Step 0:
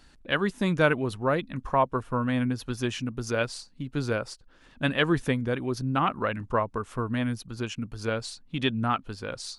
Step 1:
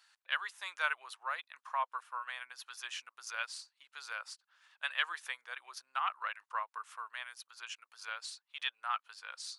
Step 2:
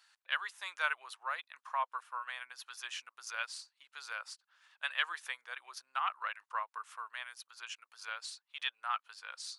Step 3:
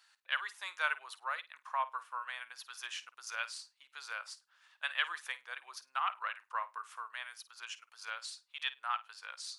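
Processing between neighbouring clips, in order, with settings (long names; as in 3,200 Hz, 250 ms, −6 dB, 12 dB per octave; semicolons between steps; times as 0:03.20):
inverse Chebyshev high-pass filter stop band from 220 Hz, stop band 70 dB; level −6 dB
no processing that can be heard
flutter between parallel walls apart 8.9 metres, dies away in 0.2 s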